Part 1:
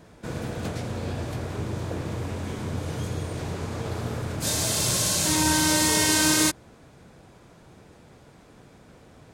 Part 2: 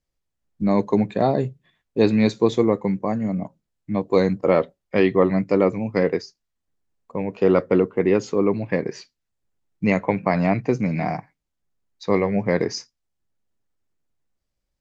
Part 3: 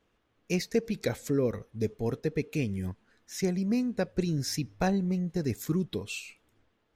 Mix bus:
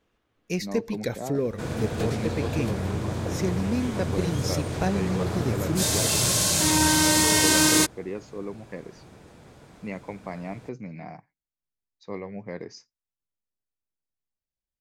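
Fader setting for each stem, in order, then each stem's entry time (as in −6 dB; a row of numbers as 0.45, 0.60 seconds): +1.5, −15.5, +0.5 decibels; 1.35, 0.00, 0.00 seconds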